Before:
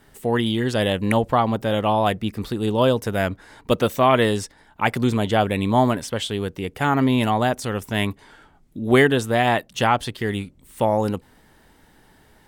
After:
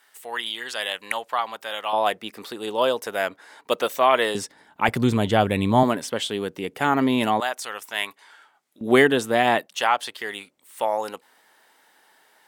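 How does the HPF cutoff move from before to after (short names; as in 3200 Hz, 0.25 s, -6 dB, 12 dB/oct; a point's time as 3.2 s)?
1100 Hz
from 1.93 s 510 Hz
from 4.35 s 190 Hz
from 4.88 s 60 Hz
from 5.83 s 220 Hz
from 7.4 s 900 Hz
from 8.81 s 220 Hz
from 9.66 s 670 Hz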